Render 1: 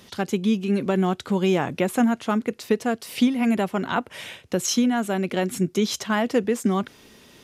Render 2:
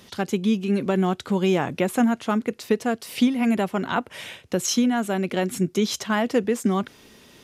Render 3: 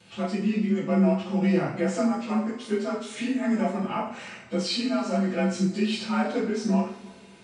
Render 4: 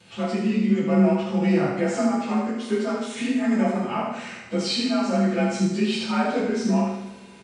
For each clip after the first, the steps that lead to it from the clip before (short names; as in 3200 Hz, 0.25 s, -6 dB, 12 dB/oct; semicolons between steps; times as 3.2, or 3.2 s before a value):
nothing audible
inharmonic rescaling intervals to 90%; two-slope reverb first 0.46 s, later 2 s, DRR -6.5 dB; gain -8.5 dB
feedback echo 76 ms, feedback 47%, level -6 dB; gain +2 dB